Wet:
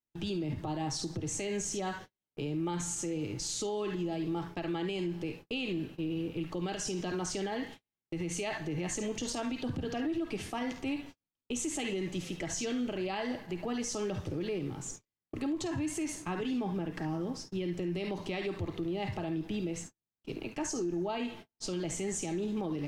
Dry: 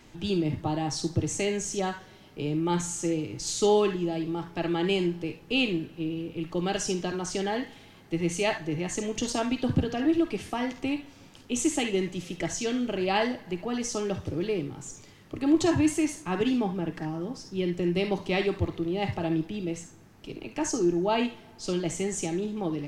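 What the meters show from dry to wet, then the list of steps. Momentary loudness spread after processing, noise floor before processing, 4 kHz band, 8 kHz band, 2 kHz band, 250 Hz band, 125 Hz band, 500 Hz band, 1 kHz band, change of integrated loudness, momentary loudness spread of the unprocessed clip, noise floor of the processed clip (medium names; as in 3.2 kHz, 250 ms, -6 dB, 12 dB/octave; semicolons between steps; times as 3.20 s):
5 LU, -52 dBFS, -6.5 dB, -3.5 dB, -7.0 dB, -6.5 dB, -6.0 dB, -7.5 dB, -7.5 dB, -7.0 dB, 9 LU, under -85 dBFS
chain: gate -43 dBFS, range -46 dB; compression, threshold -26 dBFS, peak gain reduction 9.5 dB; peak limiter -27 dBFS, peak gain reduction 9.5 dB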